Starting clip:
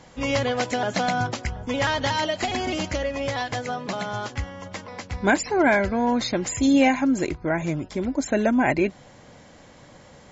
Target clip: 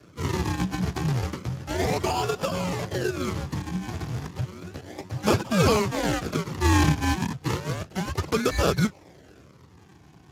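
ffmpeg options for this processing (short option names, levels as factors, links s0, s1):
-af "acrusher=samples=40:mix=1:aa=0.000001:lfo=1:lforange=40:lforate=0.32,afreqshift=-190" -ar 32000 -c:a libspeex -b:a 15k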